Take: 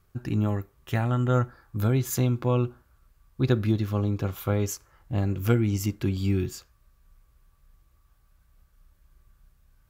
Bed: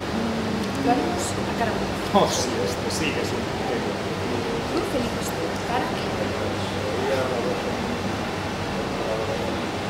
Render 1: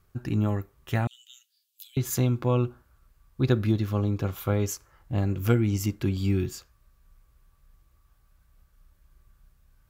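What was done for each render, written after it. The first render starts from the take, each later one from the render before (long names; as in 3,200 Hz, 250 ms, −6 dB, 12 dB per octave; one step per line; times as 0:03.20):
0:01.07–0:01.97: Chebyshev high-pass filter 2,900 Hz, order 5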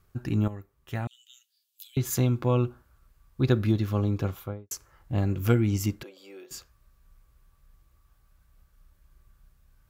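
0:00.48–0:01.89: fade in, from −12.5 dB
0:04.21–0:04.71: fade out and dull
0:06.03–0:06.51: four-pole ladder high-pass 490 Hz, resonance 70%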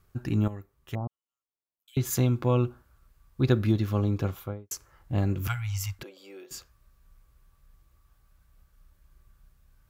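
0:00.95–0:01.88: elliptic low-pass filter 1,100 Hz
0:05.47–0:05.99: inverse Chebyshev band-stop filter 180–440 Hz, stop band 50 dB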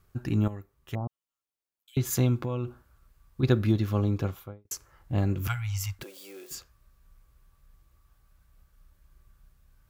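0:02.39–0:03.43: downward compressor, threshold −26 dBFS
0:04.08–0:04.65: fade out equal-power, to −22.5 dB
0:06.01–0:06.55: spike at every zero crossing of −41 dBFS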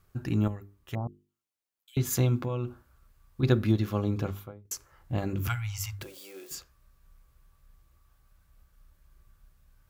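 mains-hum notches 50/100/150/200/250/300/350/400/450 Hz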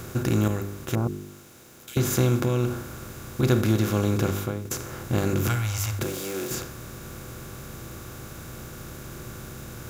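compressor on every frequency bin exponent 0.4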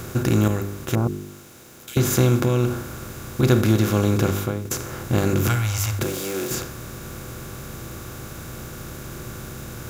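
level +4 dB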